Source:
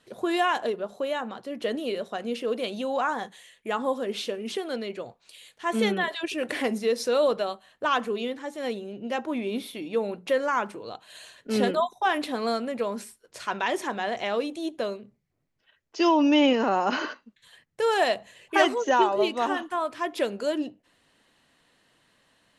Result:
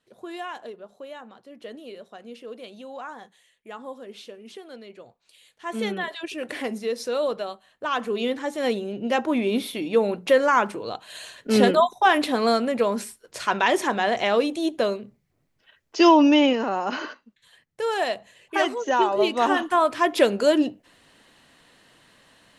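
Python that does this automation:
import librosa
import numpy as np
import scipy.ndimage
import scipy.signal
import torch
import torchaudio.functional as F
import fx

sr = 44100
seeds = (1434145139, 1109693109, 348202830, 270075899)

y = fx.gain(x, sr, db=fx.line((4.8, -10.5), (5.96, -2.5), (7.88, -2.5), (8.32, 6.5), (16.12, 6.5), (16.66, -2.0), (18.78, -2.0), (19.74, 8.5)))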